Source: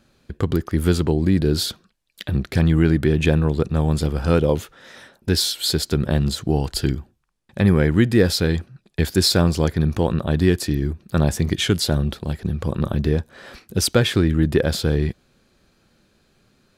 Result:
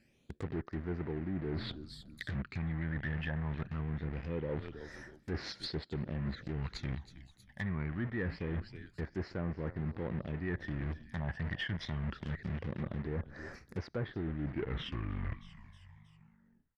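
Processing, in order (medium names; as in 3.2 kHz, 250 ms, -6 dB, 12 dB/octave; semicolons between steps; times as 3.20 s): tape stop on the ending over 2.49 s; phase shifter stages 12, 0.24 Hz, lowest notch 390–3300 Hz; frequency-shifting echo 318 ms, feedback 48%, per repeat -69 Hz, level -19 dB; in parallel at -7 dB: bit crusher 4-bit; on the sum: low-pass that closes with the level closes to 2.2 kHz, closed at -12.5 dBFS; bass shelf 68 Hz -8 dB; reverse; compression 10:1, threshold -22 dBFS, peak gain reduction 15 dB; reverse; peaking EQ 1.9 kHz +10.5 dB 0.57 oct; saturation -18.5 dBFS, distortion -16 dB; low-pass that closes with the level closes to 2.2 kHz, closed at -22.5 dBFS; trim -9 dB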